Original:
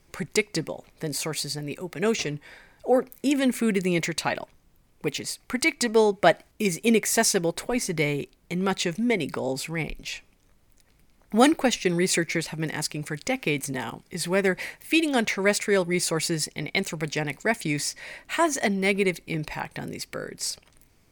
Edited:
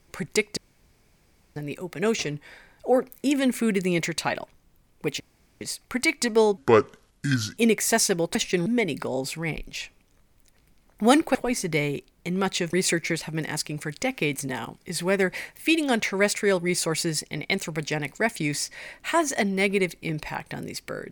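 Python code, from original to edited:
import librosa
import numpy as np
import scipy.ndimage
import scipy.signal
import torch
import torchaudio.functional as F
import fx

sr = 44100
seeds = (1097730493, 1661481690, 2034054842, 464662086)

y = fx.edit(x, sr, fx.room_tone_fill(start_s=0.57, length_s=0.99),
    fx.insert_room_tone(at_s=5.2, length_s=0.41),
    fx.speed_span(start_s=6.16, length_s=0.66, speed=0.66),
    fx.swap(start_s=7.6, length_s=1.38, other_s=11.67, other_length_s=0.31), tone=tone)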